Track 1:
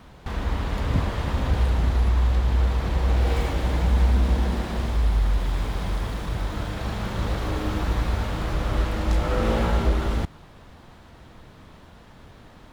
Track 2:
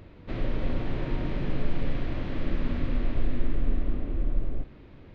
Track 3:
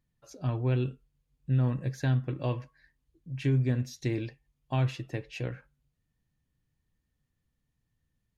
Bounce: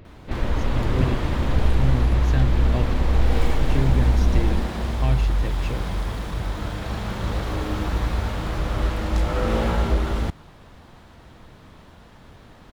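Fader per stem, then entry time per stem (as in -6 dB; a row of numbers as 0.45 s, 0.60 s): +0.5 dB, +2.0 dB, +2.0 dB; 0.05 s, 0.00 s, 0.30 s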